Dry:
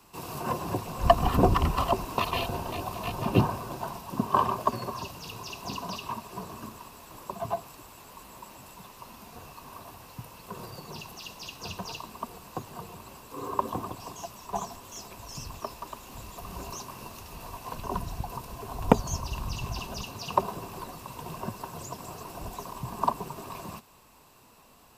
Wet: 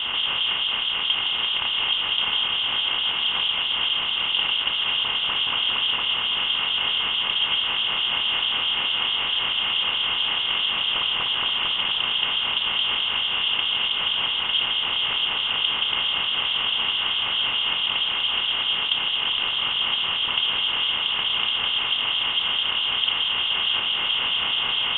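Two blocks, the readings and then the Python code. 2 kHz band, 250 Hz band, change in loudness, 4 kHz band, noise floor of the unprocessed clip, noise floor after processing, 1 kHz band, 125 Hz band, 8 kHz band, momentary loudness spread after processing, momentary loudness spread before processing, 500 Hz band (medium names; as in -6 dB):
+19.0 dB, -10.5 dB, +11.5 dB, +26.5 dB, -56 dBFS, -26 dBFS, -1.0 dB, -13.5 dB, under -35 dB, 1 LU, 20 LU, -8.0 dB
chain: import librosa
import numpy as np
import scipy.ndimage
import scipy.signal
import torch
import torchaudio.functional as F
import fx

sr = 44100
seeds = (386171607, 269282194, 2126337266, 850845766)

p1 = fx.bin_compress(x, sr, power=0.2)
p2 = fx.fuzz(p1, sr, gain_db=25.0, gate_db=-30.0)
p3 = p1 + (p2 * librosa.db_to_amplitude(-9.0))
p4 = fx.air_absorb(p3, sr, metres=77.0)
p5 = fx.rider(p4, sr, range_db=10, speed_s=0.5)
p6 = fx.harmonic_tremolo(p5, sr, hz=4.6, depth_pct=70, crossover_hz=980.0)
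p7 = scipy.signal.sosfilt(scipy.signal.butter(2, 770.0, 'highpass', fs=sr, output='sos'), p6)
p8 = fx.freq_invert(p7, sr, carrier_hz=3900)
p9 = fx.notch(p8, sr, hz=2300.0, q=23.0)
p10 = p9 + fx.echo_single(p9, sr, ms=1020, db=-9.0, dry=0)
y = p10 * librosa.db_to_amplitude(-1.5)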